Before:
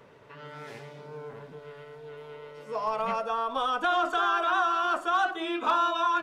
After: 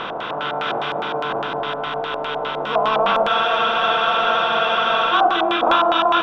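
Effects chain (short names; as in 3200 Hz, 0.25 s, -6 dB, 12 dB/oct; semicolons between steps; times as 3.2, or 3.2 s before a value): per-bin compression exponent 0.4; split-band echo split 780 Hz, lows 0.265 s, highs 0.152 s, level -7.5 dB; LFO low-pass square 4.9 Hz 710–3300 Hz; spectral freeze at 3.3, 1.83 s; gain +3.5 dB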